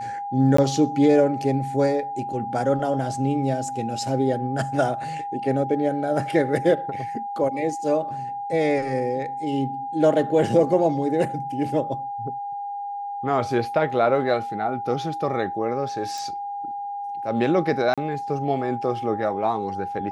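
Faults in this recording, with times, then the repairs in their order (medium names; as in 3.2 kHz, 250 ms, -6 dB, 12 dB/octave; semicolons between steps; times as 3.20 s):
whine 810 Hz -28 dBFS
0.57–0.58 s: dropout 14 ms
16.18 s: pop
17.94–17.98 s: dropout 36 ms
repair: de-click; band-stop 810 Hz, Q 30; interpolate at 0.57 s, 14 ms; interpolate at 17.94 s, 36 ms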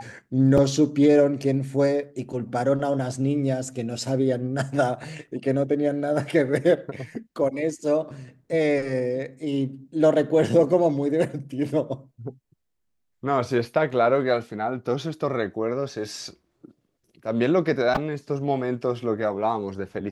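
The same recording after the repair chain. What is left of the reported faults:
nothing left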